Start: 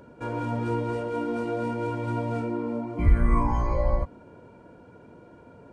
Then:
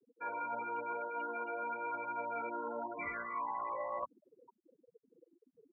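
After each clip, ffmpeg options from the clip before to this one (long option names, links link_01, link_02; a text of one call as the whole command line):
ffmpeg -i in.wav -af "afftfilt=real='re*gte(hypot(re,im),0.0224)':imag='im*gte(hypot(re,im),0.0224)':win_size=1024:overlap=0.75,highpass=1000,areverse,acompressor=threshold=-45dB:ratio=8,areverse,volume=8.5dB" out.wav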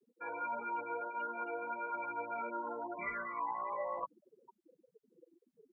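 ffmpeg -i in.wav -af "flanger=delay=4.8:depth=1.4:regen=-1:speed=1.6:shape=triangular,volume=3dB" out.wav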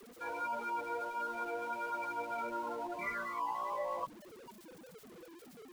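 ffmpeg -i in.wav -af "aeval=exprs='val(0)+0.5*0.00355*sgn(val(0))':channel_layout=same" out.wav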